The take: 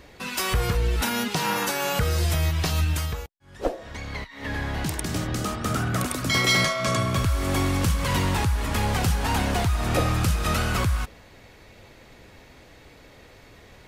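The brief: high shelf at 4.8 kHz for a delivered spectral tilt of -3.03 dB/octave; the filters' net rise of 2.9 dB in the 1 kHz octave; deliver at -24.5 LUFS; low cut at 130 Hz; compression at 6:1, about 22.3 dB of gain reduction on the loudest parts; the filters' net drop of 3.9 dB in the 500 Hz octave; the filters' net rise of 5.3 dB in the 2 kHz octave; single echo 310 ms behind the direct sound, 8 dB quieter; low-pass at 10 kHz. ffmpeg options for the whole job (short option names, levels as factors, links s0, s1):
-af "highpass=130,lowpass=10000,equalizer=f=500:t=o:g=-6.5,equalizer=f=1000:t=o:g=3.5,equalizer=f=2000:t=o:g=5,highshelf=f=4800:g=4.5,acompressor=threshold=0.0112:ratio=6,aecho=1:1:310:0.398,volume=5.96"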